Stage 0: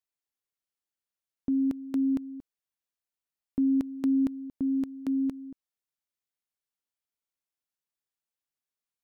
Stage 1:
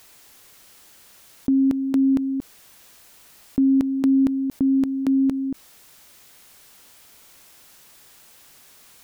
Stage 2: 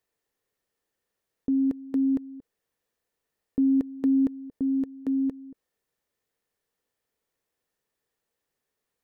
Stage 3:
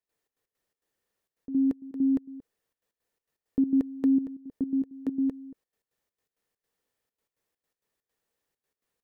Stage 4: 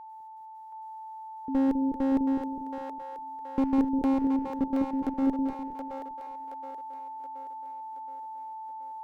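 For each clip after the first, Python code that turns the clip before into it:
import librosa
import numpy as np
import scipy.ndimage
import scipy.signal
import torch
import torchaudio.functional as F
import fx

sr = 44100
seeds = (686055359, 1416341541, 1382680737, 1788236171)

y1 = fx.env_flatten(x, sr, amount_pct=50)
y1 = y1 * 10.0 ** (7.0 / 20.0)
y2 = fx.tilt_shelf(y1, sr, db=4.0, hz=1400.0)
y2 = fx.small_body(y2, sr, hz=(460.0, 1800.0), ring_ms=25, db=9)
y2 = fx.upward_expand(y2, sr, threshold_db=-27.0, expansion=2.5)
y2 = y2 * 10.0 ** (-8.0 / 20.0)
y3 = fx.step_gate(y2, sr, bpm=165, pattern='.xx.x.xx.xxxxx.x', floor_db=-12.0, edge_ms=4.5)
y4 = y3 + 10.0 ** (-45.0 / 20.0) * np.sin(2.0 * np.pi * 880.0 * np.arange(len(y3)) / sr)
y4 = fx.clip_asym(y4, sr, top_db=-29.5, bottom_db=-20.5)
y4 = fx.echo_split(y4, sr, split_hz=480.0, low_ms=203, high_ms=724, feedback_pct=52, wet_db=-4)
y4 = y4 * 10.0 ** (2.5 / 20.0)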